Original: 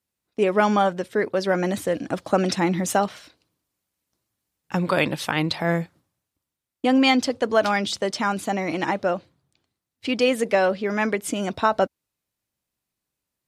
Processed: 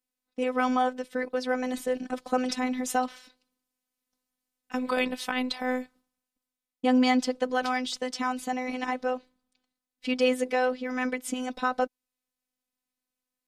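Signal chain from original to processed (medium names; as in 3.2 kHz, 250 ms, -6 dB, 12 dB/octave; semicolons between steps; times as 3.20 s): robot voice 254 Hz; trim -3.5 dB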